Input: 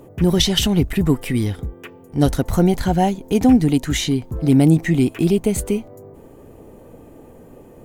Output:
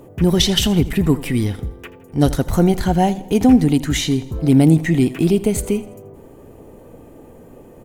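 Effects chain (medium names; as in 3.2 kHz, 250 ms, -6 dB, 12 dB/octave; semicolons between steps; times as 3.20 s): feedback delay 82 ms, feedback 47%, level -17 dB; trim +1 dB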